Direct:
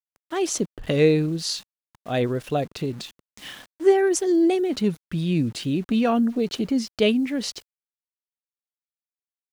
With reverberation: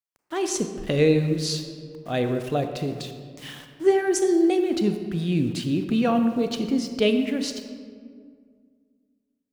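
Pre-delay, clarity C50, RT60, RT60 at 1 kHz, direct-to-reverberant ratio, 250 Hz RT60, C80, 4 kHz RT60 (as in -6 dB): 27 ms, 7.5 dB, 2.0 s, 1.8 s, 6.5 dB, 2.5 s, 8.5 dB, 1.1 s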